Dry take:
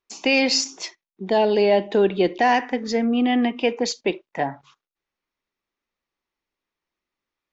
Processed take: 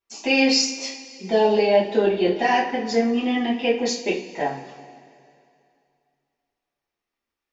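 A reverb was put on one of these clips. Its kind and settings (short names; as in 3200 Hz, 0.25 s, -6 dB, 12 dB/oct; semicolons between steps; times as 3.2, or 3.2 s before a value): two-slope reverb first 0.33 s, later 2.5 s, from -19 dB, DRR -8 dB; gain -8.5 dB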